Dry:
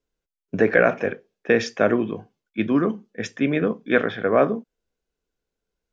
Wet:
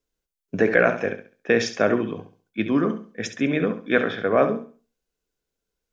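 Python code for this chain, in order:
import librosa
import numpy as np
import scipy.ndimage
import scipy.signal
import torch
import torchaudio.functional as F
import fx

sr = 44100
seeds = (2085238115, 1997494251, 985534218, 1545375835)

y = fx.high_shelf(x, sr, hz=4400.0, db=7.0)
y = fx.room_flutter(y, sr, wall_m=11.7, rt60_s=0.39)
y = F.gain(torch.from_numpy(y), -1.5).numpy()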